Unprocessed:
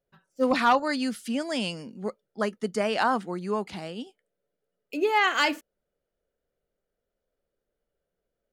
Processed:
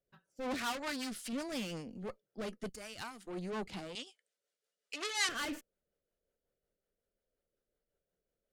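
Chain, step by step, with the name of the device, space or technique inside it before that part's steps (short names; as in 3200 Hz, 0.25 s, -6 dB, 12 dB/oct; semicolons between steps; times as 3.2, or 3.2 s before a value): 2.69–3.27 pre-emphasis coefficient 0.9; overdriven rotary cabinet (tube stage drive 35 dB, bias 0.75; rotary speaker horn 5.5 Hz); 0.58–1.33 tilt shelf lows -4 dB, about 790 Hz; 3.95–5.29 weighting filter ITU-R 468; gain +1 dB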